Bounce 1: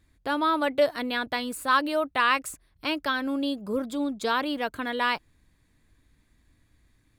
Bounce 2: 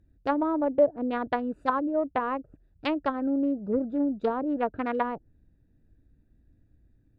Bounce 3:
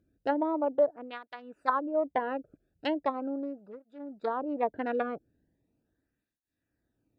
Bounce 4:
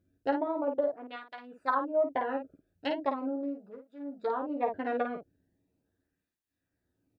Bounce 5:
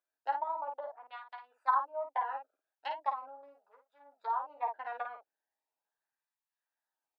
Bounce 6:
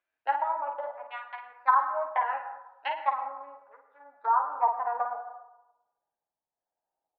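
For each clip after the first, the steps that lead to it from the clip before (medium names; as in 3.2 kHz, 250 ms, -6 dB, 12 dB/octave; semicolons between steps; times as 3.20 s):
local Wiener filter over 41 samples; low-pass that closes with the level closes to 520 Hz, closed at -24.5 dBFS; dynamic bell 900 Hz, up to +5 dB, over -42 dBFS, Q 0.75; trim +2.5 dB
cancelling through-zero flanger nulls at 0.39 Hz, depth 1.1 ms
early reflections 11 ms -3.5 dB, 53 ms -5.5 dB; trim -3 dB
ladder high-pass 820 Hz, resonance 65%; trim +3.5 dB
low-pass sweep 2.4 kHz -> 690 Hz, 3.18–5.76 s; reverberation RT60 0.95 s, pre-delay 92 ms, DRR 9.5 dB; trim +4.5 dB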